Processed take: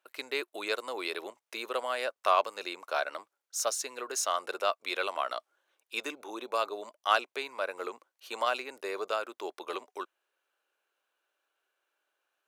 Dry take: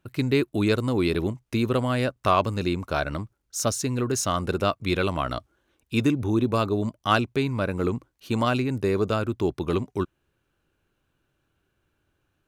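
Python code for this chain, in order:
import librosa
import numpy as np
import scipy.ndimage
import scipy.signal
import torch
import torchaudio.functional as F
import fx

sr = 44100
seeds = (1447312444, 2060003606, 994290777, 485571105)

y = scipy.signal.sosfilt(scipy.signal.butter(4, 520.0, 'highpass', fs=sr, output='sos'), x)
y = y * 10.0 ** (-3.5 / 20.0)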